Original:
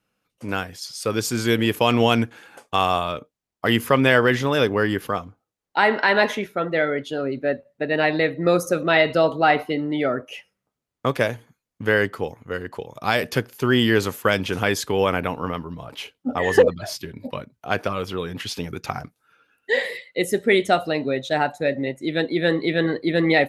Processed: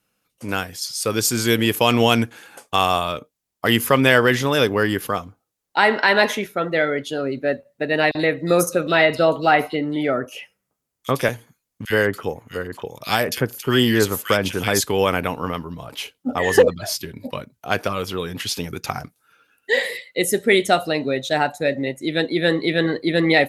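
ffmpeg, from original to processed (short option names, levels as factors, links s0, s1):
-filter_complex "[0:a]asettb=1/sr,asplit=3[s0][s1][s2];[s0]atrim=end=8.114[s3];[s1]atrim=start=8.11:end=11.29,asetpts=PTS-STARTPTS,afade=t=in:d=0.004:c=qsin,afade=t=out:st=3.176:d=0.004:c=qsin,acrossover=split=3600[s4][s5];[s4]adelay=40[s6];[s6][s5]amix=inputs=2:normalize=0,atrim=end_sample=140238[s7];[s2]atrim=start=11.286[s8];[s3][s7]acrossfade=d=0.004:c1=hsin:c2=qsin[s9];[s9][s8]acrossfade=d=0.004:c1=qsin:c2=hsin,asettb=1/sr,asplit=3[s10][s11][s12];[s10]atrim=end=11.854[s13];[s11]atrim=start=11.85:end=14.81,asetpts=PTS-STARTPTS,afade=t=in:d=0.004:c=qsin,afade=t=out:st=2.956:d=0.004:c=qsin,acrossover=split=2000[s14][s15];[s14]adelay=50[s16];[s16][s15]amix=inputs=2:normalize=0,atrim=end_sample=130536[s17];[s12]atrim=start=14.806[s18];[s13][s17]acrossfade=d=0.004:c1=hsin:c2=qsin[s19];[s19][s18]acrossfade=d=0.004:c1=qsin:c2=hsin,aemphasis=mode=production:type=cd,volume=1.19"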